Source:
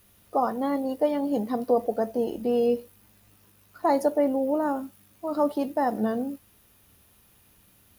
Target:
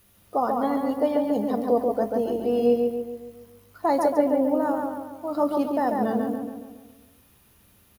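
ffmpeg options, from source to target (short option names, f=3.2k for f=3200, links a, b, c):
-filter_complex "[0:a]asplit=2[a][b];[b]adelay=139,lowpass=f=2.9k:p=1,volume=-3dB,asplit=2[c][d];[d]adelay=139,lowpass=f=2.9k:p=1,volume=0.52,asplit=2[e][f];[f]adelay=139,lowpass=f=2.9k:p=1,volume=0.52,asplit=2[g][h];[h]adelay=139,lowpass=f=2.9k:p=1,volume=0.52,asplit=2[i][j];[j]adelay=139,lowpass=f=2.9k:p=1,volume=0.52,asplit=2[k][l];[l]adelay=139,lowpass=f=2.9k:p=1,volume=0.52,asplit=2[m][n];[n]adelay=139,lowpass=f=2.9k:p=1,volume=0.52[o];[a][c][e][g][i][k][m][o]amix=inputs=8:normalize=0"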